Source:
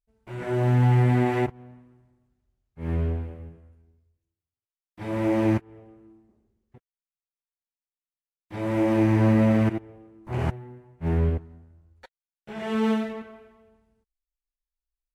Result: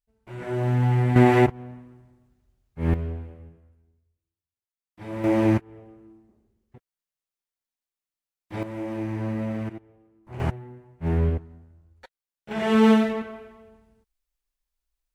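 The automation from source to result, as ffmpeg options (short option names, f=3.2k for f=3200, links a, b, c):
-af "asetnsamples=n=441:p=0,asendcmd='1.16 volume volume 7dB;2.94 volume volume -4.5dB;5.24 volume volume 2dB;8.63 volume volume -9.5dB;10.4 volume volume 0.5dB;12.51 volume volume 7dB',volume=-2dB"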